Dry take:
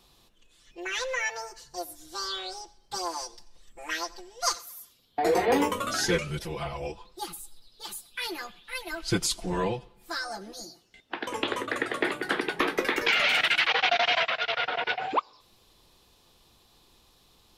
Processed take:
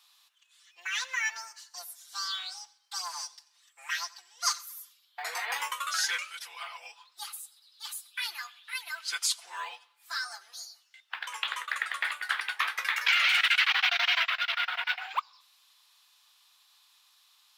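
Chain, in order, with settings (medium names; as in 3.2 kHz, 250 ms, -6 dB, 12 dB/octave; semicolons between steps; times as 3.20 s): high-pass 1.1 kHz 24 dB/octave; short-mantissa float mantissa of 4-bit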